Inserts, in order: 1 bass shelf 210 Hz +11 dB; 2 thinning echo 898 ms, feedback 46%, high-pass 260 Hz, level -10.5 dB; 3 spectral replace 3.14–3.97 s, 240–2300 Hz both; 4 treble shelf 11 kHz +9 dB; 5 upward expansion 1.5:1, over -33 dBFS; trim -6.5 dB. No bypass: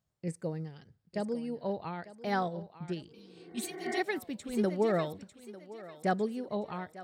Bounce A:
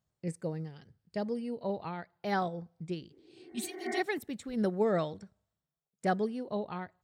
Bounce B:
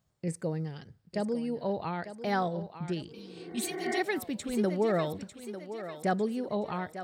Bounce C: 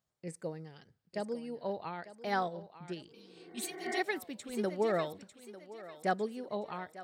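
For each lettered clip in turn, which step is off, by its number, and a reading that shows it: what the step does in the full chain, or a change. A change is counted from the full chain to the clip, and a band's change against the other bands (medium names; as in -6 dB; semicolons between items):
2, momentary loudness spread change -5 LU; 5, 8 kHz band +2.5 dB; 1, 125 Hz band -6.5 dB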